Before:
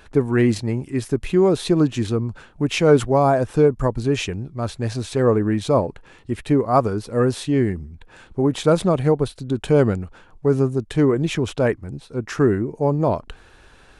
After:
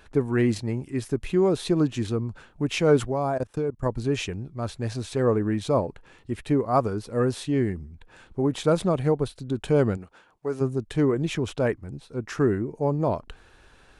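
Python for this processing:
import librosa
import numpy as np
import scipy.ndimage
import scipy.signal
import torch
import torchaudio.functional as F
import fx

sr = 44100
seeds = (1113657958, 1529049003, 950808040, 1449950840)

y = fx.level_steps(x, sr, step_db=20, at=(3.1, 3.86))
y = fx.highpass(y, sr, hz=fx.line((9.96, 270.0), (10.6, 710.0)), slope=6, at=(9.96, 10.6), fade=0.02)
y = F.gain(torch.from_numpy(y), -5.0).numpy()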